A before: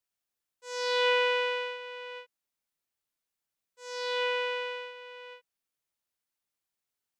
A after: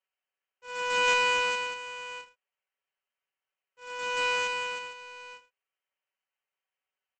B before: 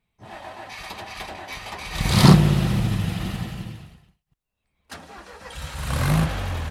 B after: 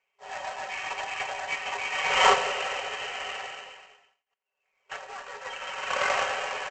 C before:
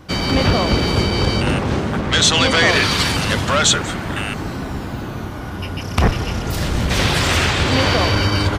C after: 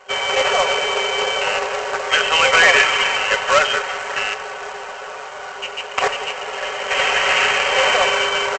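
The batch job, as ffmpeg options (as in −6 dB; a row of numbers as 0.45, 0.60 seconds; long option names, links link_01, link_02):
-filter_complex "[0:a]afftfilt=real='re*between(b*sr/4096,390,3200)':imag='im*between(b*sr/4096,390,3200)':win_size=4096:overlap=0.75,highshelf=frequency=2100:gain=5,aecho=1:1:5.3:0.59,asplit=2[link_01][link_02];[link_02]adelay=90,highpass=300,lowpass=3400,asoftclip=type=hard:threshold=-8.5dB,volume=-16dB[link_03];[link_01][link_03]amix=inputs=2:normalize=0,aresample=16000,acrusher=bits=2:mode=log:mix=0:aa=0.000001,aresample=44100"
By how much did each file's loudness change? +2.0, −7.5, +0.5 LU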